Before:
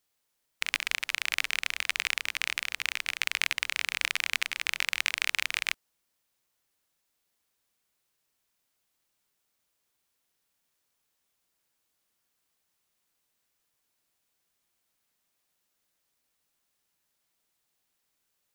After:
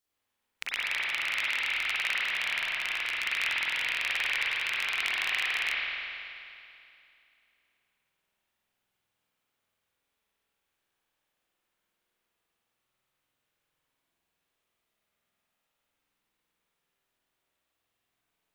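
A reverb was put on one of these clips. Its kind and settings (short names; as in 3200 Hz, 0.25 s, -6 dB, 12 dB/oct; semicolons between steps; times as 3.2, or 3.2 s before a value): spring tank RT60 2.6 s, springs 48 ms, chirp 70 ms, DRR -9 dB; gain -7.5 dB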